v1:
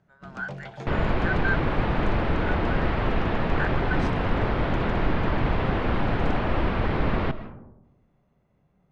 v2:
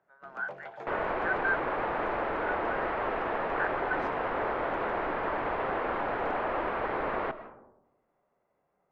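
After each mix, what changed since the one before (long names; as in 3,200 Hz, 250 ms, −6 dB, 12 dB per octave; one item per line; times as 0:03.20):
master: add three-way crossover with the lows and the highs turned down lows −23 dB, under 380 Hz, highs −16 dB, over 2,100 Hz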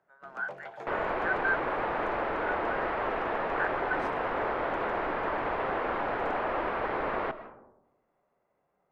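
master: remove high-frequency loss of the air 73 metres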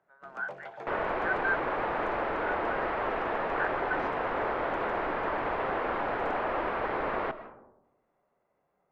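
speech: add high-frequency loss of the air 110 metres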